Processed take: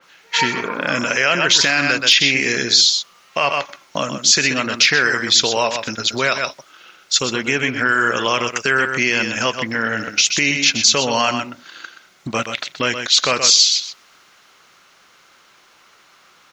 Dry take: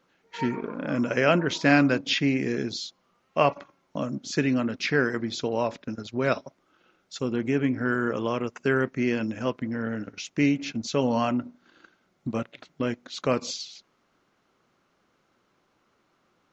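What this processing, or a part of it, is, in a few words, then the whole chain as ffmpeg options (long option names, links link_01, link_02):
mastering chain: -af "equalizer=frequency=260:width_type=o:width=0.59:gain=-3.5,aecho=1:1:125:0.316,acompressor=threshold=-30dB:ratio=2,tiltshelf=frequency=870:gain=-9.5,asoftclip=type=hard:threshold=-12.5dB,alimiter=level_in=19dB:limit=-1dB:release=50:level=0:latency=1,adynamicequalizer=threshold=0.0891:dfrequency=3000:dqfactor=0.7:tfrequency=3000:tqfactor=0.7:attack=5:release=100:ratio=0.375:range=2:mode=boostabove:tftype=highshelf,volume=-4.5dB"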